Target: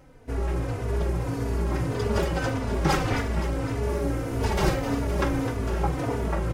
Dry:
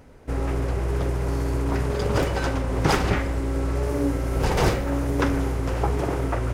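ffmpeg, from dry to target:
ffmpeg -i in.wav -filter_complex "[0:a]asplit=2[link_01][link_02];[link_02]asplit=7[link_03][link_04][link_05][link_06][link_07][link_08][link_09];[link_03]adelay=257,afreqshift=52,volume=-10dB[link_10];[link_04]adelay=514,afreqshift=104,volume=-14.3dB[link_11];[link_05]adelay=771,afreqshift=156,volume=-18.6dB[link_12];[link_06]adelay=1028,afreqshift=208,volume=-22.9dB[link_13];[link_07]adelay=1285,afreqshift=260,volume=-27.2dB[link_14];[link_08]adelay=1542,afreqshift=312,volume=-31.5dB[link_15];[link_09]adelay=1799,afreqshift=364,volume=-35.8dB[link_16];[link_10][link_11][link_12][link_13][link_14][link_15][link_16]amix=inputs=7:normalize=0[link_17];[link_01][link_17]amix=inputs=2:normalize=0,asplit=2[link_18][link_19];[link_19]adelay=3.3,afreqshift=-1.7[link_20];[link_18][link_20]amix=inputs=2:normalize=1" out.wav

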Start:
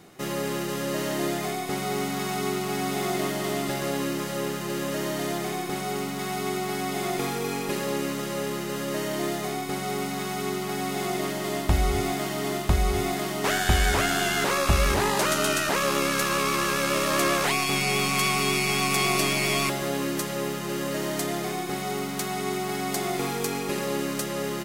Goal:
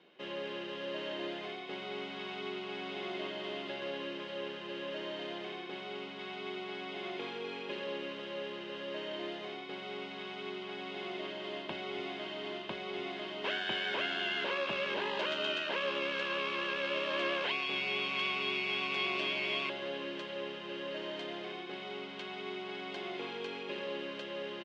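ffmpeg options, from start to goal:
ffmpeg -i in.wav -af "highpass=frequency=230:width=0.5412,highpass=frequency=230:width=1.3066,equalizer=frequency=280:width_type=q:width=4:gain=-4,equalizer=frequency=430:width_type=q:width=4:gain=-4,equalizer=frequency=720:width_type=q:width=4:gain=-5,equalizer=frequency=1200:width_type=q:width=4:gain=-8,equalizer=frequency=2000:width_type=q:width=4:gain=-4,equalizer=frequency=3000:width_type=q:width=4:gain=8,lowpass=frequency=3500:width=0.5412,lowpass=frequency=3500:width=1.3066,aecho=1:1:1.9:0.33,volume=-8dB" out.wav

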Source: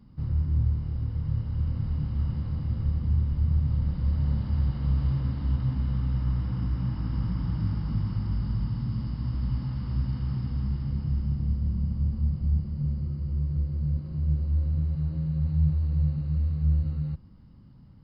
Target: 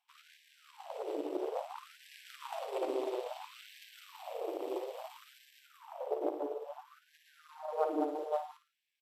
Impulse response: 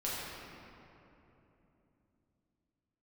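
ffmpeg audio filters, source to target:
-filter_complex "[0:a]highshelf=frequency=4000:gain=-8,acrossover=split=410|580[link_01][link_02][link_03];[link_03]asetrate=58866,aresample=44100,atempo=0.749154[link_04];[link_01][link_02][link_04]amix=inputs=3:normalize=0,aeval=exprs='0.211*(cos(1*acos(clip(val(0)/0.211,-1,1)))-cos(1*PI/2))+0.075*(cos(3*acos(clip(val(0)/0.211,-1,1)))-cos(3*PI/2))+0.0299*(cos(6*acos(clip(val(0)/0.211,-1,1)))-cos(6*PI/2))+0.00596*(cos(7*acos(clip(val(0)/0.211,-1,1)))-cos(7*PI/2))':channel_layout=same,asplit=2[link_05][link_06];[link_06]aecho=0:1:112|224|336|448|560|672:0.355|0.174|0.0852|0.0417|0.0205|0.01[link_07];[link_05][link_07]amix=inputs=2:normalize=0,asetrate=88200,aresample=44100,afftfilt=real='re*gte(b*sr/1024,280*pow(1600/280,0.5+0.5*sin(2*PI*0.59*pts/sr)))':imag='im*gte(b*sr/1024,280*pow(1600/280,0.5+0.5*sin(2*PI*0.59*pts/sr)))':win_size=1024:overlap=0.75,volume=1dB"

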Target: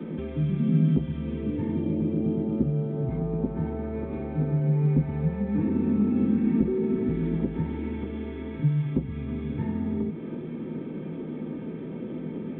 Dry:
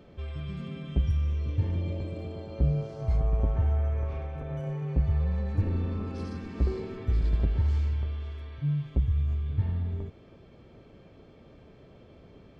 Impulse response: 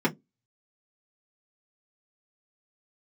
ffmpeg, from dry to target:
-filter_complex "[0:a]acrossover=split=190|480[link_01][link_02][link_03];[link_01]acompressor=threshold=-37dB:ratio=4[link_04];[link_02]acompressor=threshold=-51dB:ratio=4[link_05];[link_03]acompressor=threshold=-57dB:ratio=4[link_06];[link_04][link_05][link_06]amix=inputs=3:normalize=0[link_07];[1:a]atrim=start_sample=2205[link_08];[link_07][link_08]afir=irnorm=-1:irlink=0" -ar 8000 -c:a adpcm_g726 -b:a 40k

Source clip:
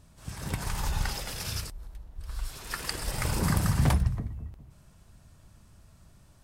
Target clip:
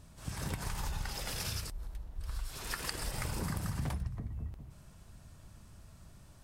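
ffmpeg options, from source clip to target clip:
ffmpeg -i in.wav -af "acompressor=threshold=-35dB:ratio=5,volume=1dB" out.wav

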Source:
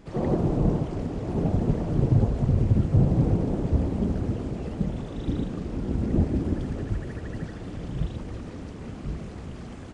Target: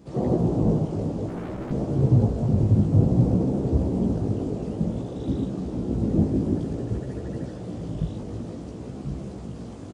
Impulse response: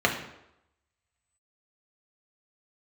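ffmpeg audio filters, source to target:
-filter_complex "[0:a]highpass=80,equalizer=frequency=1900:width_type=o:width=1.8:gain=-10.5,asettb=1/sr,asplit=3[link_01][link_02][link_03];[link_01]atrim=end=1.284[link_04];[link_02]atrim=start=1.28:end=1.71,asetpts=PTS-STARTPTS,afade=type=in:duration=0.004:curve=qsin,afade=type=out:start_time=0.426:duration=0.004:curve=qsin,volume=35dB,asoftclip=hard,volume=-35dB[link_05];[link_03]atrim=start=1.706[link_06];[link_04][link_05]acrossfade=duration=0.004:curve1=hsin:curve2=qsin[link_07];[link_07][link_06]acrossfade=duration=0.004:curve1=qsin:curve2=hsin,flanger=delay=15:depth=4.3:speed=0.55,asplit=7[link_08][link_09][link_10][link_11][link_12][link_13][link_14];[link_09]adelay=382,afreqshift=79,volume=-14.5dB[link_15];[link_10]adelay=764,afreqshift=158,volume=-18.9dB[link_16];[link_11]adelay=1146,afreqshift=237,volume=-23.4dB[link_17];[link_12]adelay=1528,afreqshift=316,volume=-27.8dB[link_18];[link_13]adelay=1910,afreqshift=395,volume=-32.2dB[link_19];[link_14]adelay=2292,afreqshift=474,volume=-36.7dB[link_20];[link_08][link_15][link_16][link_17][link_18][link_19][link_20]amix=inputs=7:normalize=0,volume=6dB"

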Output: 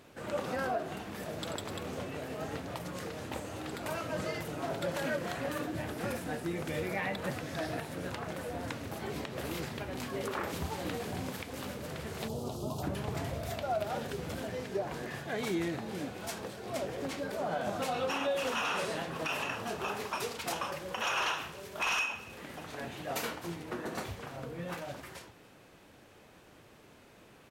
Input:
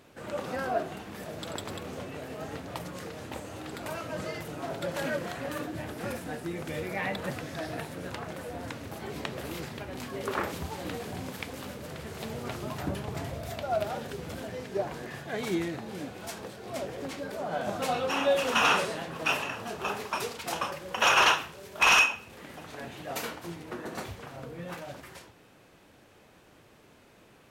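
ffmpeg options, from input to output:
ffmpeg -i in.wav -filter_complex "[0:a]alimiter=limit=-24dB:level=0:latency=1:release=140,asplit=3[link_01][link_02][link_03];[link_01]afade=type=out:start_time=12.27:duration=0.02[link_04];[link_02]asuperstop=centerf=1900:order=4:qfactor=0.72,afade=type=in:start_time=12.27:duration=0.02,afade=type=out:start_time=12.82:duration=0.02[link_05];[link_03]afade=type=in:start_time=12.82:duration=0.02[link_06];[link_04][link_05][link_06]amix=inputs=3:normalize=0,aecho=1:1:288:0.0631" out.wav

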